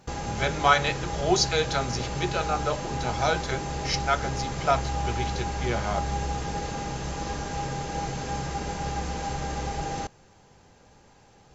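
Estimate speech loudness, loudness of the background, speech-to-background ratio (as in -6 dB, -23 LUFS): -28.0 LUFS, -31.5 LUFS, 3.5 dB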